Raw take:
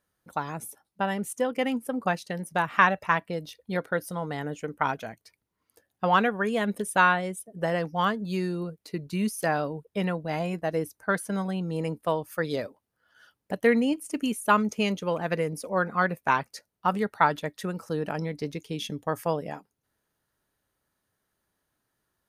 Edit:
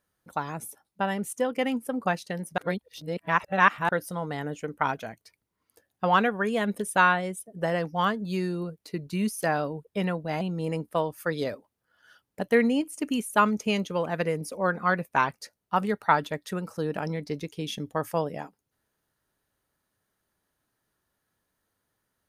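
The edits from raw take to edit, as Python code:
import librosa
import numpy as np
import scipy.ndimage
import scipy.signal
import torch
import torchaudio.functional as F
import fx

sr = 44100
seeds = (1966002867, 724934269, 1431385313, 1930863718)

y = fx.edit(x, sr, fx.reverse_span(start_s=2.58, length_s=1.31),
    fx.cut(start_s=10.41, length_s=1.12), tone=tone)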